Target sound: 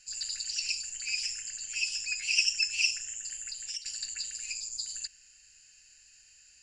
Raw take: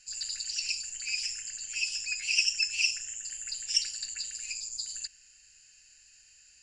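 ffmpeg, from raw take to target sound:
-filter_complex "[0:a]asettb=1/sr,asplit=3[a][b][c];[a]atrim=end=3.344[d];[b]atrim=start=3.34:end=3.86,asetpts=PTS-STARTPTS,afade=t=in:d=0.004:c=qsin,afade=t=out:st=0.516:d=0.004:c=qsin,acompressor=threshold=-35dB:ratio=12[e];[c]atrim=start=3.856[f];[d][e]acrossfade=d=0.004:c1=hsin:c2=qsin[g];[g][f]acrossfade=d=0.004:c1=qsin:c2=hsin"

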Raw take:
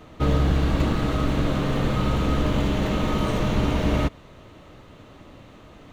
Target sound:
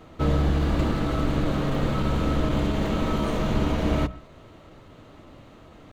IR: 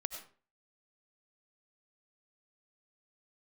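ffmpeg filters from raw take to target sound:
-filter_complex "[0:a]bandreject=f=60:t=h:w=6,bandreject=f=120:t=h:w=6,bandreject=f=180:t=h:w=6,asetrate=45392,aresample=44100,atempo=0.971532,asplit=2[a][b];[1:a]atrim=start_sample=2205,lowpass=2.1k[c];[b][c]afir=irnorm=-1:irlink=0,volume=-11dB[d];[a][d]amix=inputs=2:normalize=0,volume=-3dB"

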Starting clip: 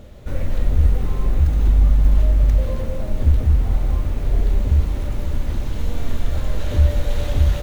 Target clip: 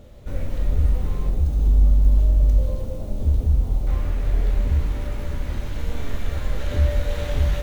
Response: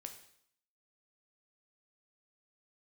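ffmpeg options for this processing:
-filter_complex "[0:a]asetnsamples=n=441:p=0,asendcmd='1.29 equalizer g -11.5;3.87 equalizer g 4.5',equalizer=f=1.8k:w=0.95:g=-2[a];[1:a]atrim=start_sample=2205[b];[a][b]afir=irnorm=-1:irlink=0,volume=1.5dB"

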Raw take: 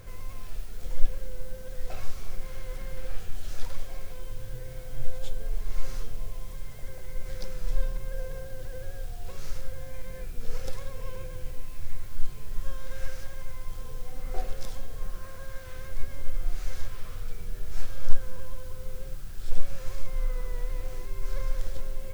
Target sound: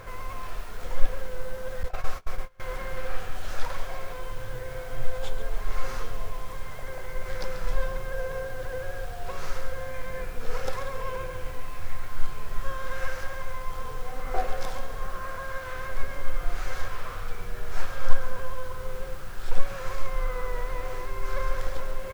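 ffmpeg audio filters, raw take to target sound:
-filter_complex "[0:a]equalizer=f=1.1k:w=0.49:g=14,asplit=2[a][b];[b]aecho=0:1:137|274|411|548|685:0.266|0.122|0.0563|0.0259|0.0119[c];[a][c]amix=inputs=2:normalize=0,asettb=1/sr,asplit=3[d][e][f];[d]atrim=end=1.834[g];[e]atrim=start=1.83:end=2.6,asetpts=PTS-STARTPTS,afade=t=in:d=0.004:c=qsin,afade=t=out:st=0.766:d=0.004:c=qsin,agate=range=-28dB:threshold=-23dB:ratio=16:detection=peak[h];[f]atrim=start=2.596[i];[g][h]acrossfade=d=0.004:c1=hsin:c2=qsin[j];[j][i]acrossfade=d=0.004:c1=qsin:c2=hsin"

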